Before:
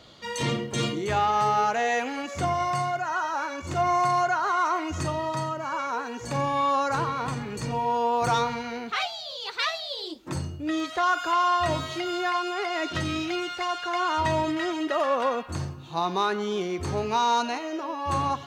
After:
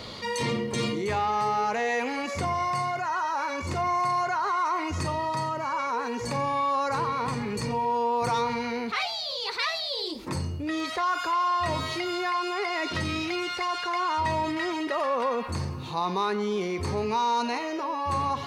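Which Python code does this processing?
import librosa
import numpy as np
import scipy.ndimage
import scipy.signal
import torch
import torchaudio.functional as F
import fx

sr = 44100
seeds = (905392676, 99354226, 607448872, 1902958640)

y = fx.ripple_eq(x, sr, per_octave=0.9, db=6)
y = fx.env_flatten(y, sr, amount_pct=50)
y = y * 10.0 ** (-5.0 / 20.0)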